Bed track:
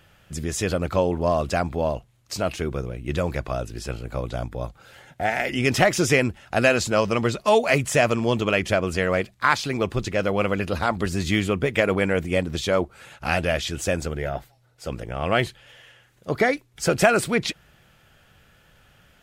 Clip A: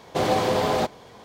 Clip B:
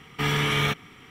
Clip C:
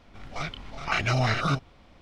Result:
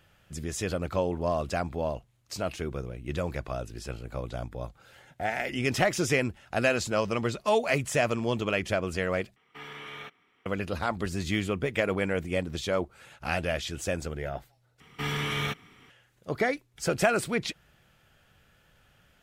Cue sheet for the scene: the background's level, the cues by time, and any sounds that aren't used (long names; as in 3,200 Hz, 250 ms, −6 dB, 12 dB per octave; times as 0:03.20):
bed track −6.5 dB
0:09.36: overwrite with B −16 dB + bass and treble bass −13 dB, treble −9 dB
0:14.80: overwrite with B −6.5 dB
not used: A, C